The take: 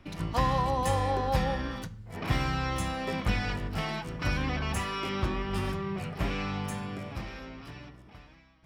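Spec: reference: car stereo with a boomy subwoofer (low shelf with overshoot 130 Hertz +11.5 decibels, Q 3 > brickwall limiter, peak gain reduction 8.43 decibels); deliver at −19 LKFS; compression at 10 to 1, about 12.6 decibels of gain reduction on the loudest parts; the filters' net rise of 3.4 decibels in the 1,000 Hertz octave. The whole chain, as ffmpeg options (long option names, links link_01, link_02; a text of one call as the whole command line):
ffmpeg -i in.wav -af "equalizer=frequency=1000:width_type=o:gain=4.5,acompressor=threshold=-33dB:ratio=10,lowshelf=frequency=130:width_type=q:width=3:gain=11.5,volume=13dB,alimiter=limit=-8.5dB:level=0:latency=1" out.wav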